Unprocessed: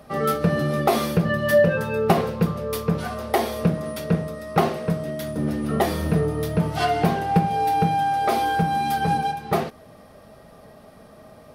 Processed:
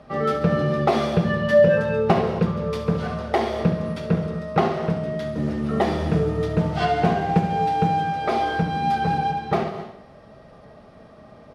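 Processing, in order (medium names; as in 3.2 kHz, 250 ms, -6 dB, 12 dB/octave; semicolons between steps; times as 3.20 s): 5.31–8.02 s: modulation noise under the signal 26 dB; distance through air 110 m; feedback delay 70 ms, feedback 56%, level -12 dB; reverberation, pre-delay 3 ms, DRR 8.5 dB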